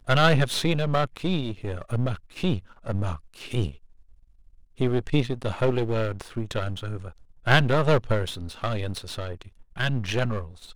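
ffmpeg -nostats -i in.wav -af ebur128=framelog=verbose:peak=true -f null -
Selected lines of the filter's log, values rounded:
Integrated loudness:
  I:         -26.5 LUFS
  Threshold: -37.1 LUFS
Loudness range:
  LRA:         5.2 LU
  Threshold: -47.5 LUFS
  LRA low:   -30.7 LUFS
  LRA high:  -25.5 LUFS
True peak:
  Peak:       -2.9 dBFS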